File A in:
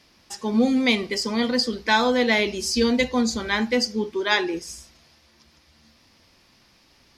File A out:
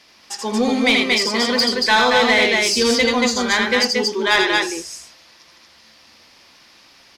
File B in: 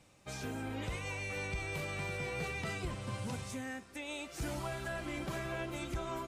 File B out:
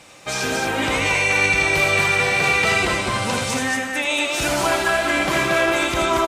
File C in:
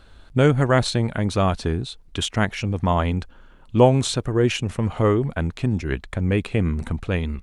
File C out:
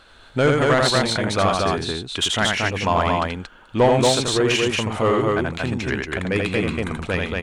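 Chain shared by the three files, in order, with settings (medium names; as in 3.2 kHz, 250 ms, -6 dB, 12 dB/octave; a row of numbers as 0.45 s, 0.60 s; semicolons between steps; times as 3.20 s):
loudspeakers at several distances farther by 28 m -4 dB, 79 m -3 dB; overdrive pedal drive 15 dB, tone 8 kHz, clips at -2 dBFS; peak normalisation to -6 dBFS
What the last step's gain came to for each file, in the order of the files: -2.0 dB, +11.0 dB, -4.0 dB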